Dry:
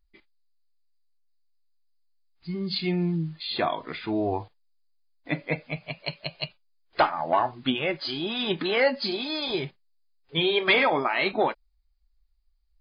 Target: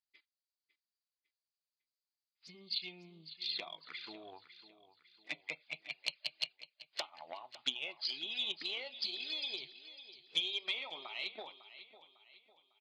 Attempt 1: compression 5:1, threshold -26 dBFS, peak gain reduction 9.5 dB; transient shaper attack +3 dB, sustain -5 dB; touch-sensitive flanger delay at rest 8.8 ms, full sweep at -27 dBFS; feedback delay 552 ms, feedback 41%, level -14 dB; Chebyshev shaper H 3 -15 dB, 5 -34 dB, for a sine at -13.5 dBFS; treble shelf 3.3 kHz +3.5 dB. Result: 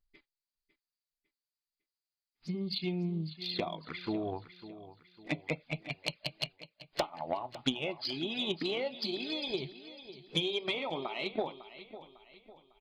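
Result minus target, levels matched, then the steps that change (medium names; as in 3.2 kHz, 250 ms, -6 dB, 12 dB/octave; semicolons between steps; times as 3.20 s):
4 kHz band -3.0 dB
add after Chebyshev shaper: band-pass filter 4.2 kHz, Q 0.71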